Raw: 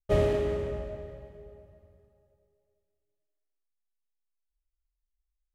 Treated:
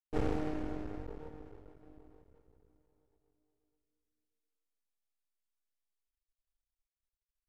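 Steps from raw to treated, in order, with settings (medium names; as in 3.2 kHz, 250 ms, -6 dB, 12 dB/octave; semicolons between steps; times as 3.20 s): half-wave rectifier; speed mistake 45 rpm record played at 33 rpm; trim -5 dB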